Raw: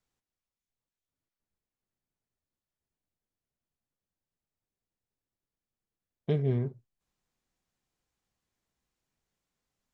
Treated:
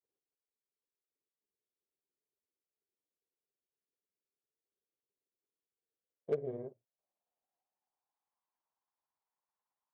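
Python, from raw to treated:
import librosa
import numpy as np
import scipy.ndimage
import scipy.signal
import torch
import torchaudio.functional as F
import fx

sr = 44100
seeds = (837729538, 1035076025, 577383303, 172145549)

y = fx.granulator(x, sr, seeds[0], grain_ms=100.0, per_s=18.0, spray_ms=22.0, spread_st=0)
y = fx.filter_sweep_bandpass(y, sr, from_hz=420.0, to_hz=940.0, start_s=5.62, end_s=8.36, q=3.9)
y = fx.cheby_harmonics(y, sr, harmonics=(3,), levels_db=(-30,), full_scale_db=-29.0)
y = y * 10.0 ** (5.0 / 20.0)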